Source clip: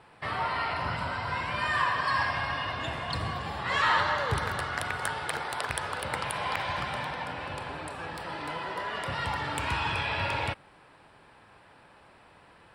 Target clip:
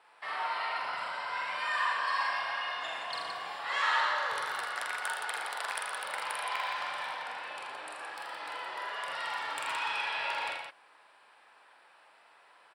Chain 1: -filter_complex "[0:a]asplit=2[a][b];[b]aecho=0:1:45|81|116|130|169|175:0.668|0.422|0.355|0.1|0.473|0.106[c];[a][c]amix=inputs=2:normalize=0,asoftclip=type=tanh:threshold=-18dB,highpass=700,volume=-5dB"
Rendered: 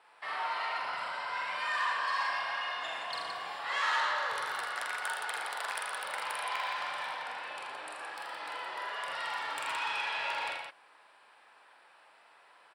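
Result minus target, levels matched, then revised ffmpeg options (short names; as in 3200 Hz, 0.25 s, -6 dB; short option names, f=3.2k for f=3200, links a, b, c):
soft clip: distortion +10 dB
-filter_complex "[0:a]asplit=2[a][b];[b]aecho=0:1:45|81|116|130|169|175:0.668|0.422|0.355|0.1|0.473|0.106[c];[a][c]amix=inputs=2:normalize=0,asoftclip=type=tanh:threshold=-11.5dB,highpass=700,volume=-5dB"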